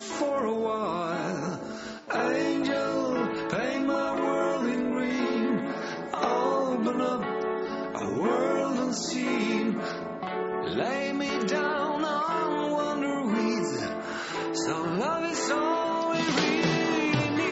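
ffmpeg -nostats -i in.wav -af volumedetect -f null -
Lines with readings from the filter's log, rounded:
mean_volume: -27.8 dB
max_volume: -10.9 dB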